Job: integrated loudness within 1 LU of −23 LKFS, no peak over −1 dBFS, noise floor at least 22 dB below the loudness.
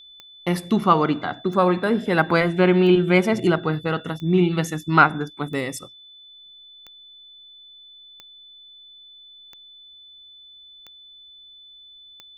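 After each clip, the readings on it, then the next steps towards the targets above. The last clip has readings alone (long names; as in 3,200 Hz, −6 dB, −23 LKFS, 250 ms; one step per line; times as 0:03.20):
number of clicks 10; interfering tone 3,500 Hz; level of the tone −44 dBFS; integrated loudness −20.5 LKFS; sample peak −2.0 dBFS; target loudness −23.0 LKFS
→ click removal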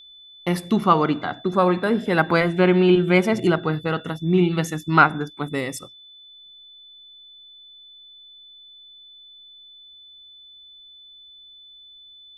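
number of clicks 0; interfering tone 3,500 Hz; level of the tone −44 dBFS
→ notch filter 3,500 Hz, Q 30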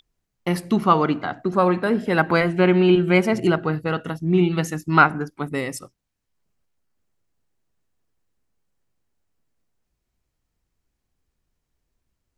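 interfering tone none found; integrated loudness −20.0 LKFS; sample peak −2.0 dBFS; target loudness −23.0 LKFS
→ level −3 dB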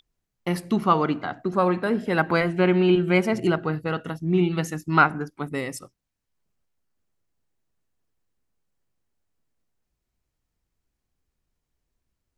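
integrated loudness −23.0 LKFS; sample peak −5.0 dBFS; background noise floor −82 dBFS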